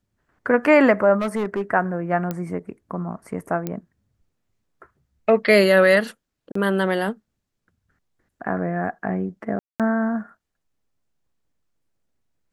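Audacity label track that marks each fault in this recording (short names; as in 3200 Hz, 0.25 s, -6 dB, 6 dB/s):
1.190000	1.620000	clipped -19.5 dBFS
2.310000	2.310000	pop -13 dBFS
3.670000	3.670000	pop -13 dBFS
6.520000	6.550000	gap 34 ms
9.590000	9.800000	gap 0.207 s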